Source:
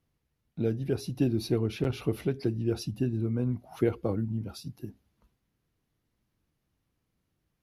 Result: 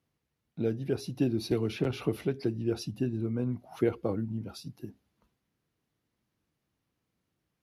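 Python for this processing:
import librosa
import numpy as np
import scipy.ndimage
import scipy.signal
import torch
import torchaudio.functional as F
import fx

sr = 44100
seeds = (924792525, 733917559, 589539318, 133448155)

y = fx.highpass(x, sr, hz=140.0, slope=6)
y = fx.high_shelf(y, sr, hz=11000.0, db=-6.0)
y = fx.band_squash(y, sr, depth_pct=70, at=(1.51, 2.17))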